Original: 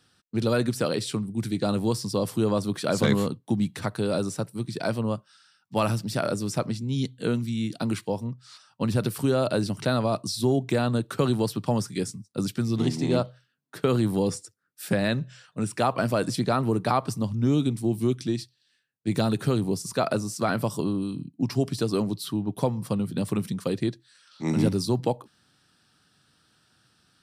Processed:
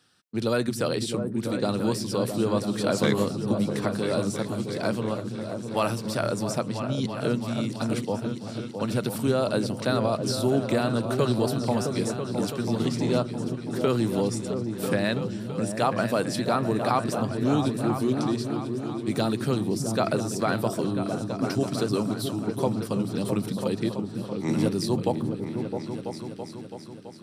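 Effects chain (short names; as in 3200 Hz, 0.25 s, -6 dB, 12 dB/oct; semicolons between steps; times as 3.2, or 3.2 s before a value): low shelf 100 Hz -11 dB; repeats that get brighter 0.331 s, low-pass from 200 Hz, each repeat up 2 oct, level -3 dB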